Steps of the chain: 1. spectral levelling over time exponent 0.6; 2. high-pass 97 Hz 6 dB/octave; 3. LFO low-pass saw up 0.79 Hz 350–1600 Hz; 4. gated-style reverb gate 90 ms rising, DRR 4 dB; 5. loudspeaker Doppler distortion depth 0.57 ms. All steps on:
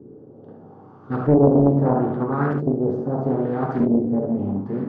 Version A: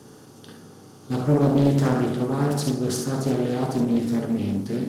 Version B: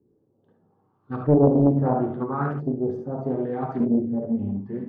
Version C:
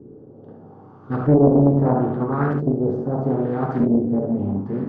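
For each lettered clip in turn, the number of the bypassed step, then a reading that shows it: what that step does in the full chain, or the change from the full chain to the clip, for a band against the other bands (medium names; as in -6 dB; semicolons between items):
3, 2 kHz band +4.0 dB; 1, 2 kHz band -2.5 dB; 2, 125 Hz band +2.0 dB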